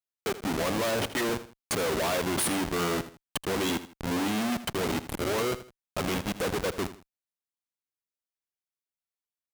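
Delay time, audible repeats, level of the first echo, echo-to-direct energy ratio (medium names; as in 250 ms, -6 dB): 80 ms, 2, -14.0 dB, -13.5 dB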